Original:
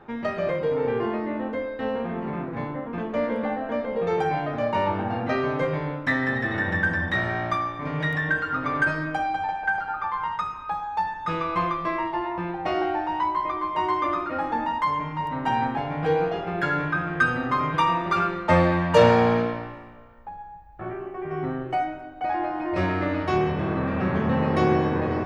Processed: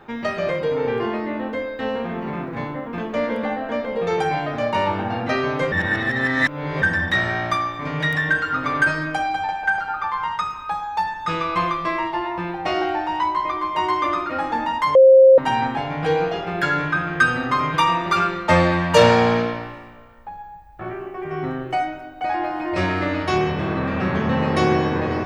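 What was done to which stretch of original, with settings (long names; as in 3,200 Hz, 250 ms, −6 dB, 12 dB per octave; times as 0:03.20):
0:05.72–0:06.82: reverse
0:14.95–0:15.38: beep over 530 Hz −8.5 dBFS
whole clip: high-shelf EQ 2,700 Hz +10.5 dB; level +2 dB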